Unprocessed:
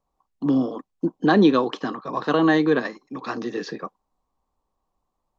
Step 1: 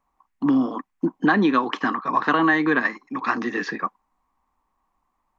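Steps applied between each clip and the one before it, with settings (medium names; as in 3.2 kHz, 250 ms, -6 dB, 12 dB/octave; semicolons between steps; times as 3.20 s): ten-band graphic EQ 125 Hz -5 dB, 250 Hz +5 dB, 500 Hz -7 dB, 1 kHz +7 dB, 2 kHz +11 dB, 4 kHz -4 dB; compression, threshold -16 dBFS, peak gain reduction 7.5 dB; trim +1 dB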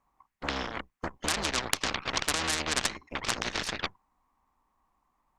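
octave divider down 2 oct, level -4 dB; Chebyshev shaper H 7 -19 dB, 8 -21 dB, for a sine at -5.5 dBFS; spectrum-flattening compressor 4:1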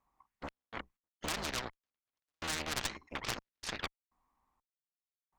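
trance gate "xx.x.xx...xx" 62 bpm -60 dB; one-sided clip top -30.5 dBFS; trim -5.5 dB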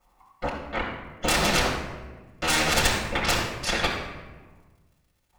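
crackle 62 per s -66 dBFS; reverberation RT60 1.3 s, pre-delay 3 ms, DRR -5.5 dB; trim +7 dB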